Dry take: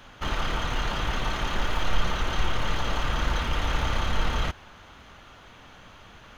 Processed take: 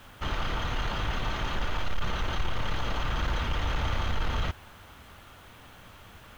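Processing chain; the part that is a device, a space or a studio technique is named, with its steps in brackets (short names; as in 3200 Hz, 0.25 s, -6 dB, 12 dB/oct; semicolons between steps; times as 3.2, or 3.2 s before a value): LPF 6000 Hz 12 dB/oct; open-reel tape (soft clip -18.5 dBFS, distortion -16 dB; bell 91 Hz +5 dB 0.82 oct; white noise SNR 34 dB); gain -2 dB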